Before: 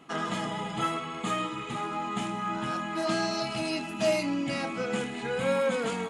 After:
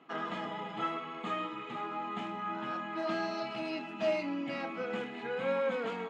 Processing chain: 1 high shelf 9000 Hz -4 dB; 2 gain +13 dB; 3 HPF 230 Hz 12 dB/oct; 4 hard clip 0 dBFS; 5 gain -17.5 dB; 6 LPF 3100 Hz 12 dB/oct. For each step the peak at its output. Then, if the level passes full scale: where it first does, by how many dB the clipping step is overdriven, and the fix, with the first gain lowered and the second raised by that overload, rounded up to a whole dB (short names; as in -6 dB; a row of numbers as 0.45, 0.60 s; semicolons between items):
-15.5, -2.5, -3.0, -3.0, -20.5, -21.0 dBFS; no overload